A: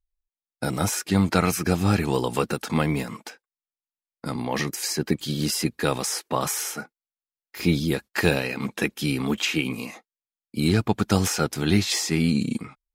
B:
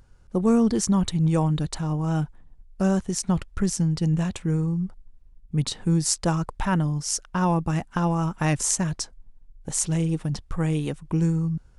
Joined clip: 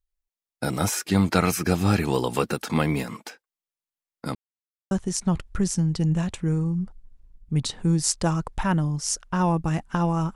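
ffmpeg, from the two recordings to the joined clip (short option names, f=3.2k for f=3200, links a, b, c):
-filter_complex "[0:a]apad=whole_dur=10.35,atrim=end=10.35,asplit=2[a][b];[a]atrim=end=4.35,asetpts=PTS-STARTPTS,afade=t=out:st=4.346:d=0.004:c=hsin[c];[b]atrim=start=4.35:end=4.91,asetpts=PTS-STARTPTS,volume=0[d];[1:a]atrim=start=2.93:end=8.37,asetpts=PTS-STARTPTS,afade=t=in:d=0.004:c=hsin[e];[c][d][e]concat=n=3:v=0:a=1"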